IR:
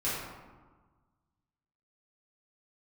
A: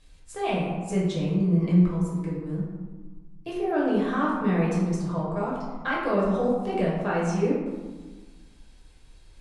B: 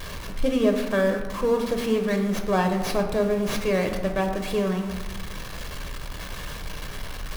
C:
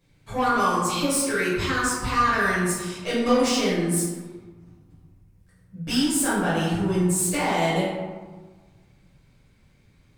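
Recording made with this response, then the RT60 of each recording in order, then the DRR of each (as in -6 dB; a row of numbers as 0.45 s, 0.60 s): C; 1.4 s, 1.4 s, 1.4 s; -6.0 dB, 4.0 dB, -10.5 dB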